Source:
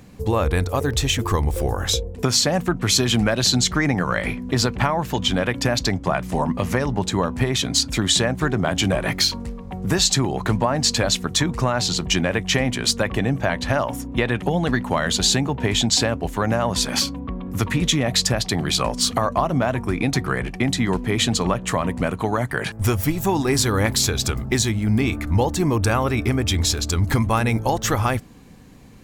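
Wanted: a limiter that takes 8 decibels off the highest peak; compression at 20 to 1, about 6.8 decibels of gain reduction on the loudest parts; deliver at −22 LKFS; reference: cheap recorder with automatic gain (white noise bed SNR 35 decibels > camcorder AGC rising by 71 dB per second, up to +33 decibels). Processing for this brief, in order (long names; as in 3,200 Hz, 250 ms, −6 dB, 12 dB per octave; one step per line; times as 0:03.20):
downward compressor 20 to 1, threshold −21 dBFS
brickwall limiter −16.5 dBFS
white noise bed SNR 35 dB
camcorder AGC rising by 71 dB per second, up to +33 dB
level +5.5 dB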